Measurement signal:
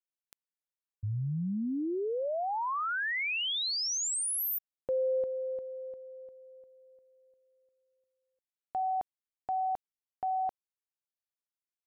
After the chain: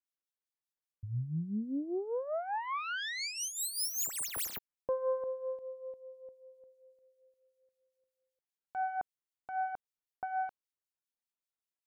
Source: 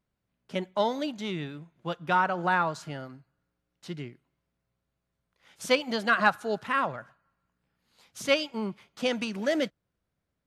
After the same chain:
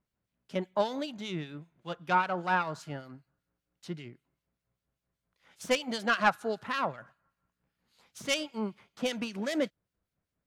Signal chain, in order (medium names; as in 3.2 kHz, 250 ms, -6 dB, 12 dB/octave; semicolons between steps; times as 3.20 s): self-modulated delay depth 0.13 ms; harmonic tremolo 5.1 Hz, depth 70%, crossover 2.1 kHz